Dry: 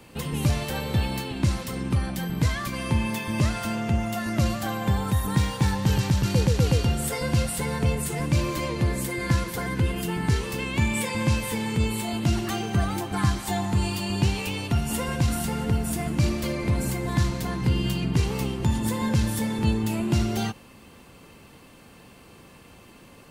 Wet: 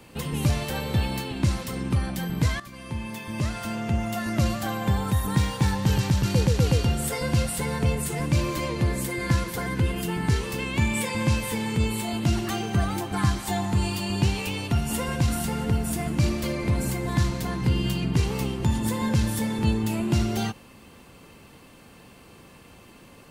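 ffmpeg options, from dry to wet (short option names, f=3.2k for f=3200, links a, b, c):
-filter_complex "[0:a]asplit=2[a][b];[a]atrim=end=2.6,asetpts=PTS-STARTPTS,afade=t=out:st=2.596:d=0.004:c=hsin:silence=0.199526[c];[b]atrim=start=2.6,asetpts=PTS-STARTPTS,afade=t=in:d=1.59:silence=0.199526[d];[c][d]concat=n=2:v=0:a=1"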